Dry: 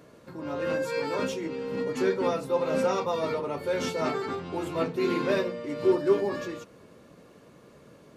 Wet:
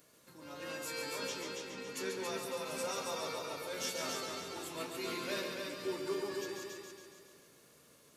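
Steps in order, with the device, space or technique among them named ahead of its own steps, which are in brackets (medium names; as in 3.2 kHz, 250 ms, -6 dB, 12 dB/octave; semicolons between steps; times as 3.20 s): 1.14–1.82 s: low-pass 6.2 kHz; multi-head tape echo (multi-head delay 139 ms, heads first and second, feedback 51%, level -6 dB; wow and flutter 21 cents); pre-emphasis filter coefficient 0.9; trim +2.5 dB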